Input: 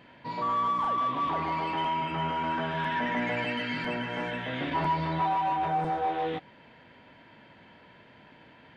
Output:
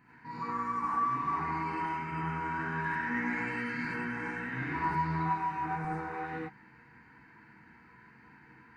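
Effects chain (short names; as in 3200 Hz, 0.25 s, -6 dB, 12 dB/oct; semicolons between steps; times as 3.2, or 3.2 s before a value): fixed phaser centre 1400 Hz, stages 4; non-linear reverb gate 0.12 s rising, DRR -6 dB; gain -6 dB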